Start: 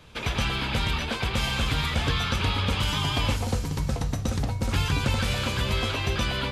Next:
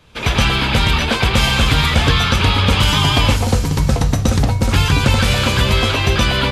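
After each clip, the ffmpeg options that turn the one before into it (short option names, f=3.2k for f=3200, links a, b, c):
-af "dynaudnorm=f=130:g=3:m=14.5dB"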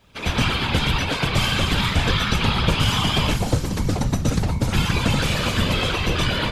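-af "acrusher=bits=10:mix=0:aa=0.000001,afftfilt=real='hypot(re,im)*cos(2*PI*random(0))':imag='hypot(re,im)*sin(2*PI*random(1))':win_size=512:overlap=0.75"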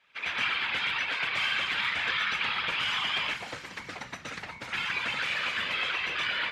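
-af "bandpass=f=2k:t=q:w=2:csg=0"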